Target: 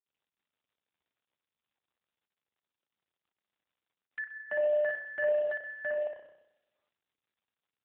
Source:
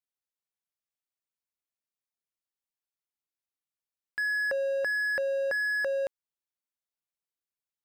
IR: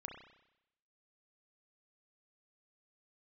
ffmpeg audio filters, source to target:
-filter_complex "[0:a]highpass=f=330:t=q:w=0.5412,highpass=f=330:t=q:w=1.307,lowpass=f=3k:t=q:w=0.5176,lowpass=f=3k:t=q:w=0.7071,lowpass=f=3k:t=q:w=1.932,afreqshift=51,asoftclip=type=tanh:threshold=-28.5dB,asplit=3[a][b][c];[a]afade=t=out:st=4.57:d=0.02[d];[b]asplit=2[e][f];[f]adelay=45,volume=-2dB[g];[e][g]amix=inputs=2:normalize=0,afade=t=in:st=4.57:d=0.02,afade=t=out:st=5.39:d=0.02[h];[c]afade=t=in:st=5.39:d=0.02[i];[d][h][i]amix=inputs=3:normalize=0,asplit=2[j][k];[1:a]atrim=start_sample=2205,lowshelf=f=170:g=-2.5,adelay=60[l];[k][l]afir=irnorm=-1:irlink=0,volume=3dB[m];[j][m]amix=inputs=2:normalize=0,volume=-2dB" -ar 8000 -c:a libopencore_amrnb -b:a 7950

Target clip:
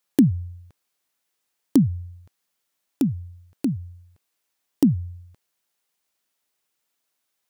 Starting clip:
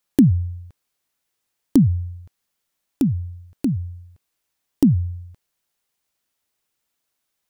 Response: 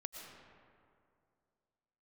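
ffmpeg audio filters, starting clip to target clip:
-af "highpass=f=200:p=1"

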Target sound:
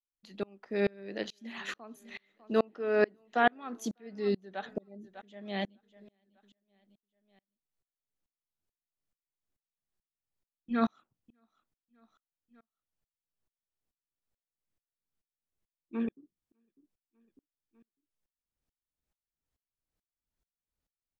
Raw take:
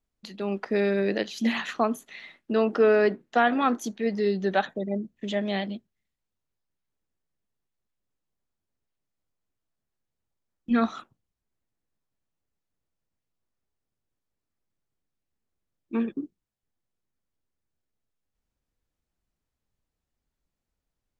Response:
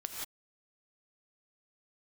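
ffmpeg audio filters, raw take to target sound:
-af "aecho=1:1:600|1200|1800:0.0708|0.0333|0.0156,aeval=exprs='val(0)*pow(10,-33*if(lt(mod(-2.3*n/s,1),2*abs(-2.3)/1000),1-mod(-2.3*n/s,1)/(2*abs(-2.3)/1000),(mod(-2.3*n/s,1)-2*abs(-2.3)/1000)/(1-2*abs(-2.3)/1000))/20)':c=same"

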